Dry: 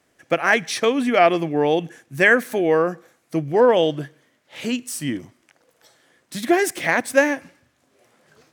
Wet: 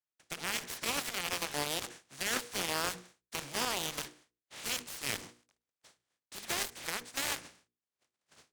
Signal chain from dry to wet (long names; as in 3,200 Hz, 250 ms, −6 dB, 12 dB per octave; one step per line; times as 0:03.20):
compressing power law on the bin magnitudes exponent 0.29
noise gate −55 dBFS, range −30 dB
mains-hum notches 60/120/180/240/300/360/420/480 Hz
reversed playback
downward compressor 6 to 1, threshold −25 dBFS, peak gain reduction 15 dB
reversed playback
brickwall limiter −17.5 dBFS, peak gain reduction 8 dB
Savitzky-Golay smoothing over 9 samples
harmonic generator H 5 −23 dB, 7 −10 dB, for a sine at −17 dBFS
every ending faded ahead of time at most 240 dB per second
level −3 dB